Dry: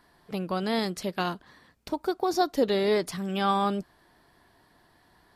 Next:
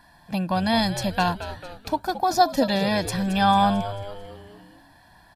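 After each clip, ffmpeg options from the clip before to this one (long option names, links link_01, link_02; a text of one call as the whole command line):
ffmpeg -i in.wav -filter_complex "[0:a]aecho=1:1:1.2:0.91,asplit=6[link_01][link_02][link_03][link_04][link_05][link_06];[link_02]adelay=222,afreqshift=-96,volume=-12dB[link_07];[link_03]adelay=444,afreqshift=-192,volume=-17.8dB[link_08];[link_04]adelay=666,afreqshift=-288,volume=-23.7dB[link_09];[link_05]adelay=888,afreqshift=-384,volume=-29.5dB[link_10];[link_06]adelay=1110,afreqshift=-480,volume=-35.4dB[link_11];[link_01][link_07][link_08][link_09][link_10][link_11]amix=inputs=6:normalize=0,volume=4dB" out.wav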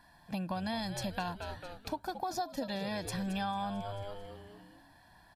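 ffmpeg -i in.wav -af "acompressor=threshold=-26dB:ratio=6,volume=-7dB" out.wav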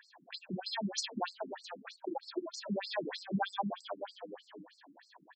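ffmpeg -i in.wav -af "afftfilt=real='re*between(b*sr/1024,240*pow(6200/240,0.5+0.5*sin(2*PI*3.2*pts/sr))/1.41,240*pow(6200/240,0.5+0.5*sin(2*PI*3.2*pts/sr))*1.41)':imag='im*between(b*sr/1024,240*pow(6200/240,0.5+0.5*sin(2*PI*3.2*pts/sr))/1.41,240*pow(6200/240,0.5+0.5*sin(2*PI*3.2*pts/sr))*1.41)':win_size=1024:overlap=0.75,volume=9dB" out.wav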